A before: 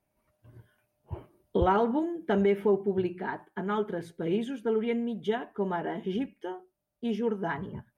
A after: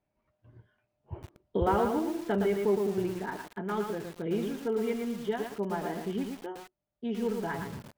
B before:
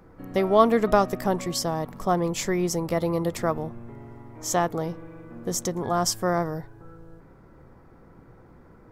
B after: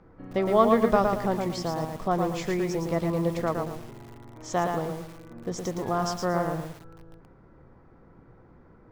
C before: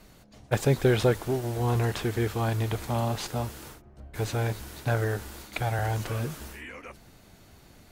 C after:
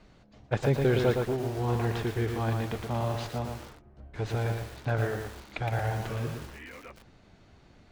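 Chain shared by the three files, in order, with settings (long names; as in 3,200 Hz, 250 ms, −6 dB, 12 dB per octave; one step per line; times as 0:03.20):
high-frequency loss of the air 130 metres
feedback echo at a low word length 114 ms, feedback 35%, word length 7 bits, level −4 dB
level −2.5 dB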